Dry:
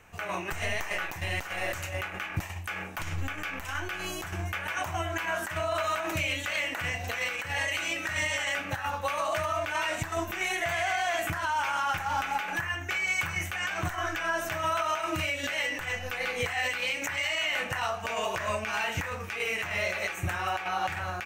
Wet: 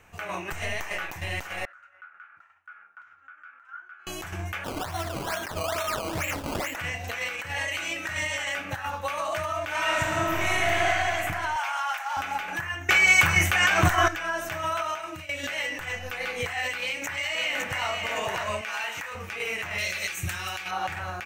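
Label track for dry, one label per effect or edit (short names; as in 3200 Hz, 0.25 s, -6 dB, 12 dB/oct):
1.650000	4.070000	band-pass 1400 Hz, Q 17
4.640000	6.760000	decimation with a swept rate 17× 2.3 Hz
9.650000	10.890000	reverb throw, RT60 3 s, DRR -4.5 dB
11.560000	12.170000	inverse Chebyshev high-pass stop band from 330 Hz
12.890000	14.080000	gain +11 dB
14.820000	15.290000	fade out, to -15.5 dB
16.780000	17.870000	echo throw 0.56 s, feedback 35%, level -4 dB
18.610000	19.150000	HPF 850 Hz 6 dB/oct
19.780000	20.710000	EQ curve 150 Hz 0 dB, 750 Hz -9 dB, 4300 Hz +8 dB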